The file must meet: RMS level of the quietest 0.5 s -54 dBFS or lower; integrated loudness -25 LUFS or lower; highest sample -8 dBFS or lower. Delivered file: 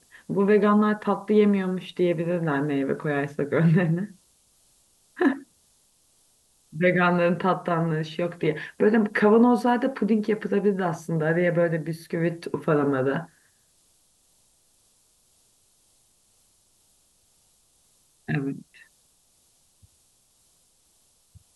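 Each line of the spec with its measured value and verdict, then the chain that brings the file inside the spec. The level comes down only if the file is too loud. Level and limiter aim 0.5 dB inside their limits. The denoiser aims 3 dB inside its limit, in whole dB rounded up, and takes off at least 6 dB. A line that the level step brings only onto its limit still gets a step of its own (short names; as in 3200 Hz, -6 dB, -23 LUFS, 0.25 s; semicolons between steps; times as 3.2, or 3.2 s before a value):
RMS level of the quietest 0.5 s -64 dBFS: OK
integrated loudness -23.5 LUFS: fail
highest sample -7.5 dBFS: fail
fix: gain -2 dB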